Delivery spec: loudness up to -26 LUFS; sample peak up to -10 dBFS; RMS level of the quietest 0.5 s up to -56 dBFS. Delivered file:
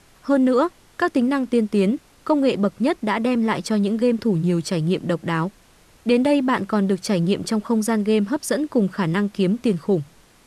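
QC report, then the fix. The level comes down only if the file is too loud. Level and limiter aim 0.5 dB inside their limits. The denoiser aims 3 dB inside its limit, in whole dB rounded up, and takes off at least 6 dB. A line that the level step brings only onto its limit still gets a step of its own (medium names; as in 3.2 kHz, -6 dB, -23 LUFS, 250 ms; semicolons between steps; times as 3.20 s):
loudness -21.0 LUFS: fail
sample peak -7.5 dBFS: fail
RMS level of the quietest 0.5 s -53 dBFS: fail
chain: trim -5.5 dB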